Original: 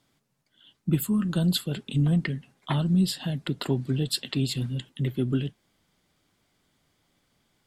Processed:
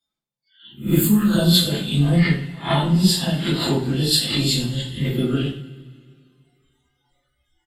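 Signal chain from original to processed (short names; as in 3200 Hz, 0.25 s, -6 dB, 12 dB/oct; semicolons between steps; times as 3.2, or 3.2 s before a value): spectral swells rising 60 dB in 0.31 s; comb 5.8 ms, depth 32%; de-hum 52.58 Hz, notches 29; spectral noise reduction 27 dB; two-slope reverb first 0.41 s, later 2.3 s, from -22 dB, DRR -8 dB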